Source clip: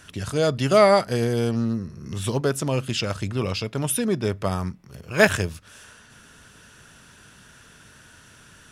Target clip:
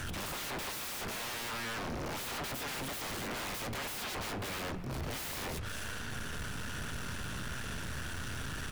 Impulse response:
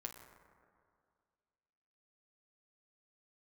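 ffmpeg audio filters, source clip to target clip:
-filter_complex "[0:a]aeval=exprs='if(lt(val(0),0),0.447*val(0),val(0))':c=same,lowshelf=f=110:g=8.5,acontrast=42,aeval=exprs='0.015*(abs(mod(val(0)/0.015+3,4)-2)-1)':c=same,aeval=exprs='0.0158*(cos(1*acos(clip(val(0)/0.0158,-1,1)))-cos(1*PI/2))+0.00562*(cos(5*acos(clip(val(0)/0.0158,-1,1)))-cos(5*PI/2))':c=same,asplit=2[a][b];[b]adelay=513.1,volume=-18dB,highshelf=f=4k:g=-11.5[c];[a][c]amix=inputs=2:normalize=0,asplit=2[d][e];[1:a]atrim=start_sample=2205,asetrate=57330,aresample=44100,lowpass=5.1k[f];[e][f]afir=irnorm=-1:irlink=0,volume=1dB[g];[d][g]amix=inputs=2:normalize=0"

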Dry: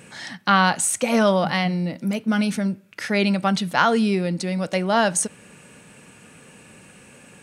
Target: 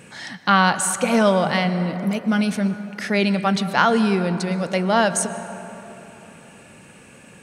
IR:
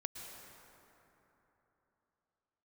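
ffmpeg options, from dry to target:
-filter_complex "[0:a]asplit=2[a][b];[1:a]atrim=start_sample=2205,highshelf=f=7.3k:g=-11.5[c];[b][c]afir=irnorm=-1:irlink=0,volume=-2dB[d];[a][d]amix=inputs=2:normalize=0,volume=-2.5dB"

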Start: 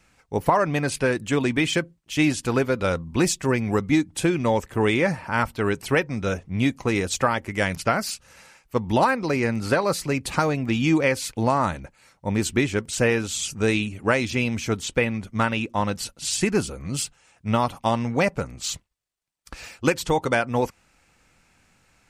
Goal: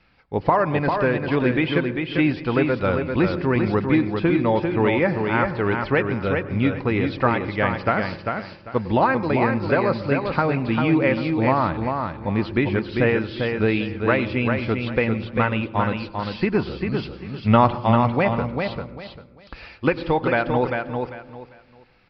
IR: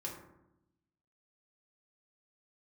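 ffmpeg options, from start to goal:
-filter_complex "[0:a]aresample=11025,aresample=44100,asettb=1/sr,asplit=3[a][b][c];[a]atrim=end=17.034[d];[b]atrim=start=17.03:end=17.84,asetpts=PTS-STARTPTS,afade=t=in:d=0.004:c=qsin,afade=t=out:st=0.806:d=0.004:c=qsin,acontrast=70[e];[c]atrim=start=17.836[f];[d][e]acrossfade=d=0.004:c1=hsin:c2=qsin[g];[g][f]acrossfade=d=0.004:c1=qsin:c2=hsin,asplit=2[h][i];[1:a]atrim=start_sample=2205,lowpass=f=1.3k:p=1,adelay=97[j];[i][j]afir=irnorm=-1:irlink=0,volume=-14dB[k];[h][k]amix=inputs=2:normalize=0,acrossover=split=3000[l][m];[m]acompressor=threshold=-50dB:ratio=4:attack=1:release=60[n];[l][n]amix=inputs=2:normalize=0,aecho=1:1:396|792|1188:0.562|0.135|0.0324,volume=1dB"

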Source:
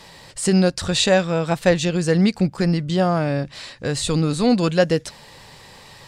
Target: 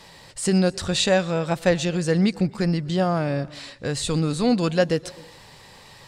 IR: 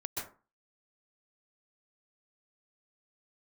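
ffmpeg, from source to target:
-filter_complex "[0:a]asplit=2[a][b];[1:a]atrim=start_sample=2205,asetrate=40131,aresample=44100,adelay=119[c];[b][c]afir=irnorm=-1:irlink=0,volume=-24dB[d];[a][d]amix=inputs=2:normalize=0,volume=-3dB"

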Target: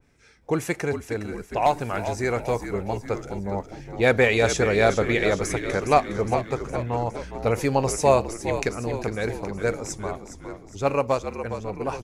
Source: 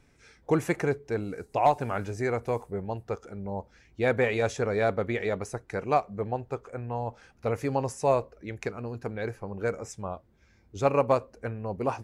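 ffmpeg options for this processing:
-filter_complex "[0:a]dynaudnorm=f=290:g=17:m=6dB,asplit=2[a][b];[b]asplit=7[c][d][e][f][g][h][i];[c]adelay=412,afreqshift=-58,volume=-9.5dB[j];[d]adelay=824,afreqshift=-116,volume=-14.2dB[k];[e]adelay=1236,afreqshift=-174,volume=-19dB[l];[f]adelay=1648,afreqshift=-232,volume=-23.7dB[m];[g]adelay=2060,afreqshift=-290,volume=-28.4dB[n];[h]adelay=2472,afreqshift=-348,volume=-33.2dB[o];[i]adelay=2884,afreqshift=-406,volume=-37.9dB[p];[j][k][l][m][n][o][p]amix=inputs=7:normalize=0[q];[a][q]amix=inputs=2:normalize=0,adynamicequalizer=threshold=0.0112:dfrequency=2200:dqfactor=0.7:tfrequency=2200:tqfactor=0.7:attack=5:release=100:ratio=0.375:range=3.5:mode=boostabove:tftype=highshelf"

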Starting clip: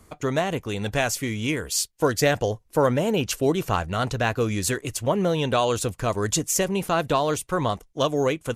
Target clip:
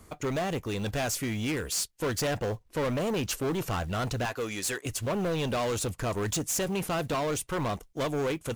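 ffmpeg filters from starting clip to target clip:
-filter_complex "[0:a]asettb=1/sr,asplit=3[a][b][c];[a]atrim=end=2.344[d];[b]atrim=start=2.34:end=2.85,asetpts=PTS-STARTPTS,afade=t=in:d=0.004:c=qsin,afade=t=out:st=0.506:d=0.004:c=qsin,highshelf=f=7.5k:g=-12[e];[c]atrim=start=2.846[f];[d][e]acrossfade=d=0.004:c1=hsin:c2=qsin[g];[g][f]acrossfade=d=0.004:c1=qsin:c2=hsin,asettb=1/sr,asplit=3[h][i][j];[h]atrim=end=4.254[k];[i]atrim=start=4.25:end=4.86,asetpts=PTS-STARTPTS,afade=t=in:d=0.004:c=qsin,afade=t=out:st=0.606:d=0.004:c=qsin,highpass=f=680:p=1[l];[j]atrim=start=4.856[m];[k][l]acrossfade=d=0.004:c1=hsin:c2=qsin[n];[n][m]acrossfade=d=0.004:c1=qsin:c2=hsin,asoftclip=type=tanh:threshold=-26dB,acrusher=bits=7:mode=log:mix=0:aa=0.000001"

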